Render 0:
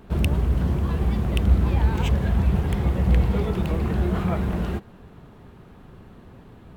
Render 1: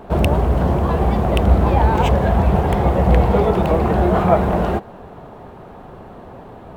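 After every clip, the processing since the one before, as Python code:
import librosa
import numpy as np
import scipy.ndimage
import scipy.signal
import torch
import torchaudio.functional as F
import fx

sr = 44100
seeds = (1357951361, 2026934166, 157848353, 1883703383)

y = fx.peak_eq(x, sr, hz=700.0, db=14.5, octaves=1.7)
y = y * 10.0 ** (3.5 / 20.0)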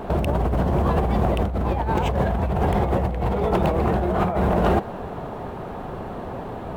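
y = fx.over_compress(x, sr, threshold_db=-21.0, ratio=-1.0)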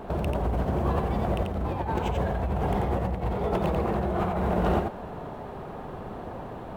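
y = x + 10.0 ** (-4.0 / 20.0) * np.pad(x, (int(89 * sr / 1000.0), 0))[:len(x)]
y = y * 10.0 ** (-7.0 / 20.0)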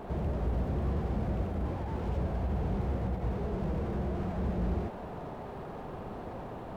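y = fx.slew_limit(x, sr, full_power_hz=11.0)
y = y * 10.0 ** (-3.0 / 20.0)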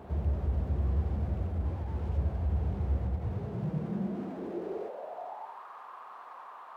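y = fx.filter_sweep_highpass(x, sr, from_hz=74.0, to_hz=1100.0, start_s=3.12, end_s=5.65, q=4.7)
y = y * 10.0 ** (-6.0 / 20.0)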